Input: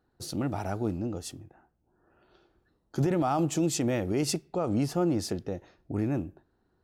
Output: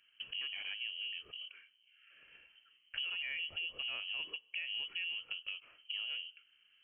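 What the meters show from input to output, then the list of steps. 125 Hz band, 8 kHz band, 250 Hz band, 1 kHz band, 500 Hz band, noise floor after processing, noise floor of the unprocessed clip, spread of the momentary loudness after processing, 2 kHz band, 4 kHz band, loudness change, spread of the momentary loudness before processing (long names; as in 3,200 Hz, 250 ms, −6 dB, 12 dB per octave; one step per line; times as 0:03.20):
below −40 dB, below −40 dB, below −40 dB, −26.5 dB, −33.0 dB, −71 dBFS, −74 dBFS, 11 LU, +5.5 dB, +5.5 dB, −9.5 dB, 12 LU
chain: downward compressor 4 to 1, threshold −43 dBFS, peak gain reduction 17 dB
voice inversion scrambler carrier 3,100 Hz
level +2 dB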